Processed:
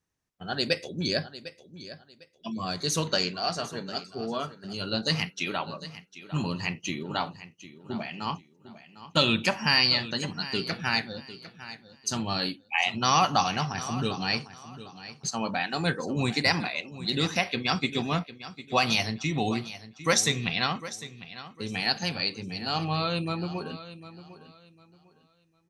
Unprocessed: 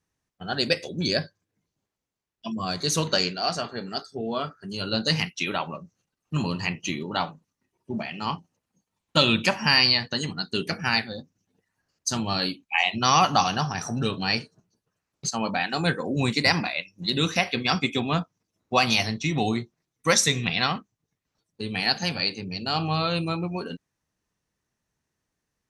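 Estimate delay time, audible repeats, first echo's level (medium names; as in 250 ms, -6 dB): 752 ms, 2, -15.0 dB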